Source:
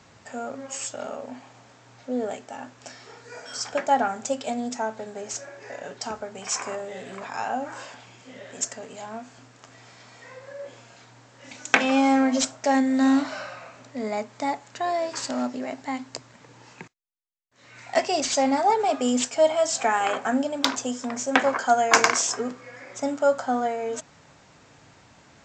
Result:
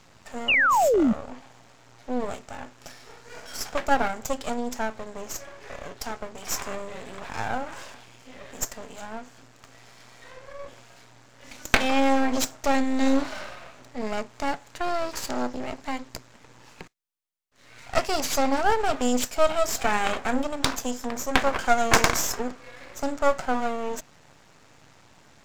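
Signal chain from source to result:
half-wave rectification
sound drawn into the spectrogram fall, 0:00.48–0:01.13, 200–3,000 Hz −22 dBFS
level +2.5 dB

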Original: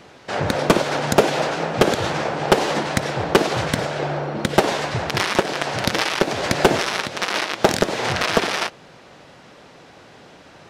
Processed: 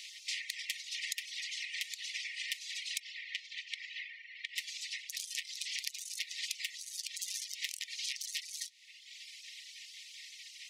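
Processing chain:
gate on every frequency bin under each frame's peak −15 dB weak
reverb reduction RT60 1 s
0:02.99–0:04.55: low-pass filter 4,900 Hz → 2,000 Hz 12 dB per octave
downward compressor 8 to 1, threshold −44 dBFS, peak gain reduction 25.5 dB
linear-phase brick-wall high-pass 1,800 Hz
level +8.5 dB

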